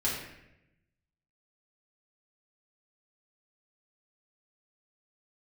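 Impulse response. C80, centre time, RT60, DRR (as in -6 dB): 5.0 dB, 55 ms, 0.85 s, -6.5 dB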